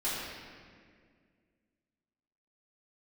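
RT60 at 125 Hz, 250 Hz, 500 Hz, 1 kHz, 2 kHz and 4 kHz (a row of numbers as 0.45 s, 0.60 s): 2.4 s, 2.6 s, 2.2 s, 1.7 s, 1.9 s, 1.4 s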